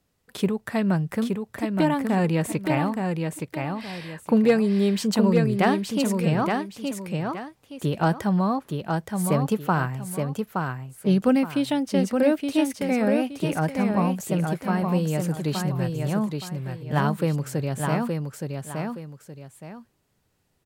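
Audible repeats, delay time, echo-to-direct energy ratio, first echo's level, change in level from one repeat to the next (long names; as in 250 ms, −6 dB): 2, 870 ms, −4.0 dB, −4.5 dB, −10.0 dB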